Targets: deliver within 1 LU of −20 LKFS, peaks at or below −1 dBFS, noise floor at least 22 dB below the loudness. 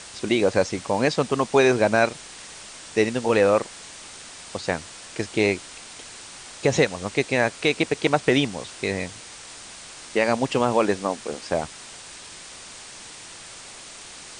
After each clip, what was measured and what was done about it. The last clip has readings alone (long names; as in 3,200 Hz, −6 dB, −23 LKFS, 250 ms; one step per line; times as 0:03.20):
background noise floor −42 dBFS; target noise floor −45 dBFS; integrated loudness −23.0 LKFS; sample peak −4.5 dBFS; target loudness −20.0 LKFS
→ noise reduction from a noise print 6 dB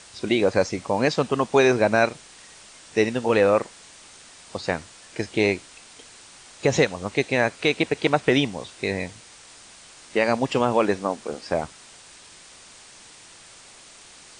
background noise floor −48 dBFS; integrated loudness −23.0 LKFS; sample peak −4.5 dBFS; target loudness −20.0 LKFS
→ level +3 dB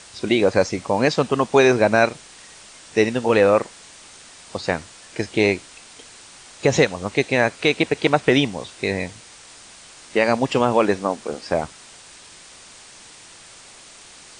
integrated loudness −20.0 LKFS; sample peak −1.5 dBFS; background noise floor −45 dBFS